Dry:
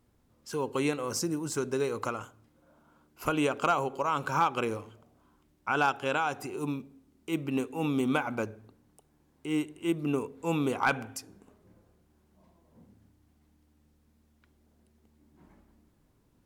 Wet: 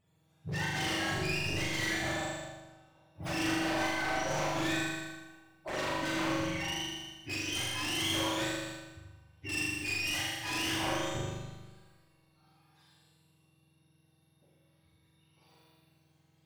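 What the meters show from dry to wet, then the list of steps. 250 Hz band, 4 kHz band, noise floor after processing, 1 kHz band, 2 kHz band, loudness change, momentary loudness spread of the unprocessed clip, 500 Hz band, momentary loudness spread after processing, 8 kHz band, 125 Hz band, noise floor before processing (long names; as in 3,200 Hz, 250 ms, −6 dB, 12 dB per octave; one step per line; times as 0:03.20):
−5.0 dB, +9.0 dB, −70 dBFS, −6.0 dB, +2.0 dB, −2.0 dB, 11 LU, −6.0 dB, 13 LU, +3.0 dB, −0.5 dB, −68 dBFS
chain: frequency axis turned over on the octave scale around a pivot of 910 Hz
brickwall limiter −23.5 dBFS, peak gain reduction 10.5 dB
wave folding −31.5 dBFS
flutter between parallel walls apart 6.9 metres, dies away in 1.2 s
four-comb reverb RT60 1.1 s, combs from 31 ms, DRR 3 dB
one half of a high-frequency compander decoder only
level −1.5 dB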